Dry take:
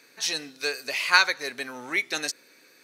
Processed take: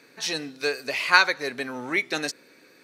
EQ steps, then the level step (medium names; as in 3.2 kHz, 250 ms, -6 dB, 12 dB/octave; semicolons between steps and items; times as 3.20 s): tilt EQ -2 dB/octave; band-stop 6.3 kHz, Q 28; +3.0 dB